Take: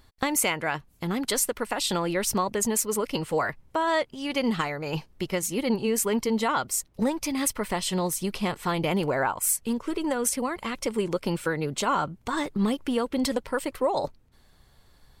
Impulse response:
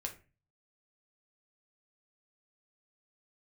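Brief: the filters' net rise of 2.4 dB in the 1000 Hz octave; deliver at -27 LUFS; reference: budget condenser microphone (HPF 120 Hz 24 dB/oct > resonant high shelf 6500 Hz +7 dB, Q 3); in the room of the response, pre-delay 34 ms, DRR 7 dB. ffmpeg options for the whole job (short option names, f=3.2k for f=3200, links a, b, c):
-filter_complex "[0:a]equalizer=f=1k:t=o:g=3,asplit=2[a][b];[1:a]atrim=start_sample=2205,adelay=34[c];[b][c]afir=irnorm=-1:irlink=0,volume=-6dB[d];[a][d]amix=inputs=2:normalize=0,highpass=f=120:w=0.5412,highpass=f=120:w=1.3066,highshelf=f=6.5k:t=q:w=3:g=7,volume=-6dB"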